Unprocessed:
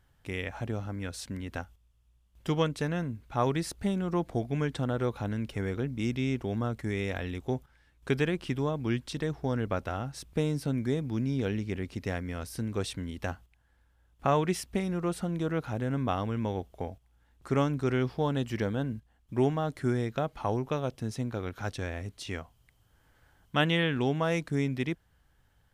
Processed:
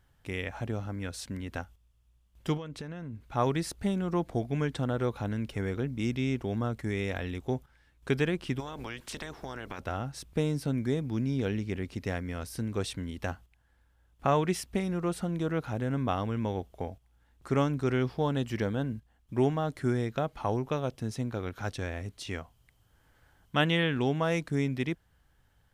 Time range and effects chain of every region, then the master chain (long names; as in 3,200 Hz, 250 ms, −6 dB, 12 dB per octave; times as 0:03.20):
0:02.57–0:03.21: high-shelf EQ 7,000 Hz −9 dB + downward compressor 12 to 1, threshold −35 dBFS
0:08.59–0:09.78: ceiling on every frequency bin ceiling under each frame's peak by 19 dB + downward compressor, threshold −35 dBFS
whole clip: no processing